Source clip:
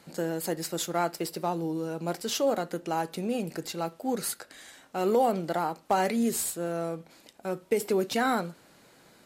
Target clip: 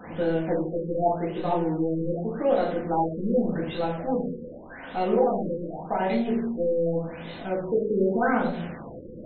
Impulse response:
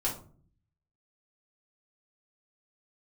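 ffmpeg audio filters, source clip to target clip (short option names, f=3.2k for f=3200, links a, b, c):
-filter_complex "[0:a]aeval=exprs='val(0)+0.5*0.0168*sgn(val(0))':c=same,asplit=3[a][b][c];[a]afade=t=out:st=5.12:d=0.02[d];[b]tremolo=f=22:d=0.824,afade=t=in:st=5.12:d=0.02,afade=t=out:st=6.07:d=0.02[e];[c]afade=t=in:st=6.07:d=0.02[f];[d][e][f]amix=inputs=3:normalize=0[g];[1:a]atrim=start_sample=2205,afade=t=out:st=0.4:d=0.01,atrim=end_sample=18081,asetrate=29106,aresample=44100[h];[g][h]afir=irnorm=-1:irlink=0,afftfilt=real='re*lt(b*sr/1024,550*pow(4300/550,0.5+0.5*sin(2*PI*0.85*pts/sr)))':imag='im*lt(b*sr/1024,550*pow(4300/550,0.5+0.5*sin(2*PI*0.85*pts/sr)))':win_size=1024:overlap=0.75,volume=-7dB"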